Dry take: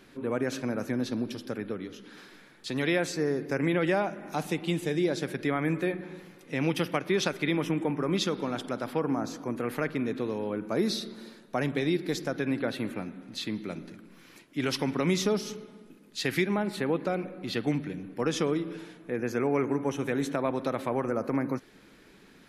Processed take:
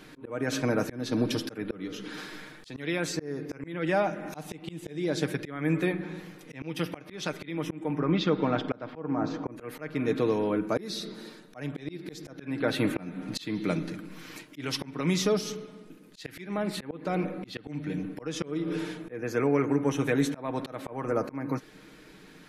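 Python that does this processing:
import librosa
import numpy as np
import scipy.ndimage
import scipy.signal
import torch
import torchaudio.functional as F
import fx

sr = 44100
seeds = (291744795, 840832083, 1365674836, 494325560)

y = fx.air_absorb(x, sr, metres=250.0, at=(7.99, 9.52))
y = y + 0.45 * np.pad(y, (int(6.5 * sr / 1000.0), 0))[:len(y)]
y = fx.rider(y, sr, range_db=10, speed_s=0.5)
y = fx.auto_swell(y, sr, attack_ms=319.0)
y = y * librosa.db_to_amplitude(3.0)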